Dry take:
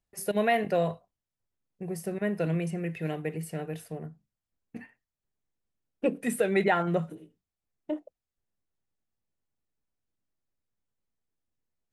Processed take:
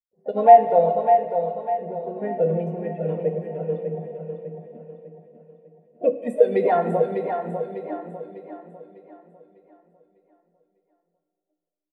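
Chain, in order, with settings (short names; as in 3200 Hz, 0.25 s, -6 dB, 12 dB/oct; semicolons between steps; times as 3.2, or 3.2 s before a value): high shelf 6700 Hz +4.5 dB; small resonant body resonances 490/710/1100/3500 Hz, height 14 dB, ringing for 65 ms; in parallel at 0 dB: limiter -14 dBFS, peak gain reduction 9.5 dB; on the sum: harmoniser +4 st -9 dB; low-pass opened by the level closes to 560 Hz, open at -13.5 dBFS; on a send: feedback echo 0.6 s, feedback 55%, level -5 dB; on the sum: plate-style reverb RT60 3.2 s, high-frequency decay 1×, DRR 4 dB; spectral expander 1.5:1; gain -1.5 dB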